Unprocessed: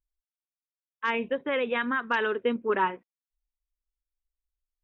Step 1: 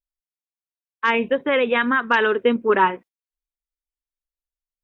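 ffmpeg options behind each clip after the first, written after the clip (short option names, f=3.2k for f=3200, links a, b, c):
-af "agate=range=-17dB:threshold=-49dB:ratio=16:detection=peak,volume=8.5dB"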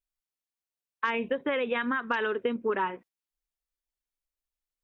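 -af "acompressor=threshold=-26dB:ratio=6"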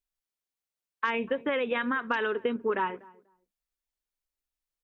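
-filter_complex "[0:a]asplit=2[a][b];[b]adelay=244,lowpass=f=1k:p=1,volume=-21dB,asplit=2[c][d];[d]adelay=244,lowpass=f=1k:p=1,volume=0.21[e];[a][c][e]amix=inputs=3:normalize=0"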